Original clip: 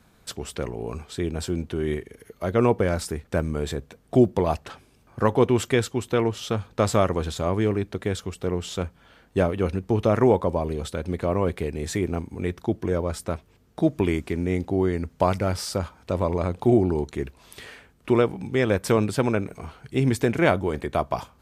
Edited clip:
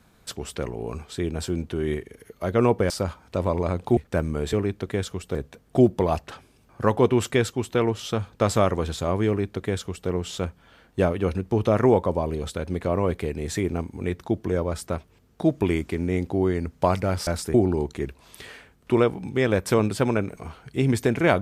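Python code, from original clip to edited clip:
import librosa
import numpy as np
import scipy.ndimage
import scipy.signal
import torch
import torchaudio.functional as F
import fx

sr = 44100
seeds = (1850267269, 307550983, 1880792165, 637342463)

y = fx.edit(x, sr, fx.swap(start_s=2.9, length_s=0.27, other_s=15.65, other_length_s=1.07),
    fx.duplicate(start_s=7.65, length_s=0.82, to_s=3.73), tone=tone)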